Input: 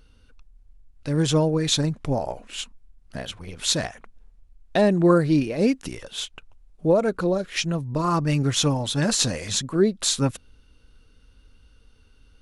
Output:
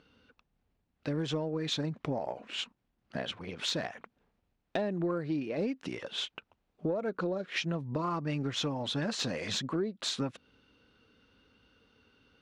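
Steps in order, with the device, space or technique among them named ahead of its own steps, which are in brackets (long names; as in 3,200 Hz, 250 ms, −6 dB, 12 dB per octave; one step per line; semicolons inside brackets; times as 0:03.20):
AM radio (band-pass filter 170–3,600 Hz; downward compressor 8 to 1, threshold −29 dBFS, peak gain reduction 16 dB; soft clipping −18.5 dBFS, distortion −28 dB)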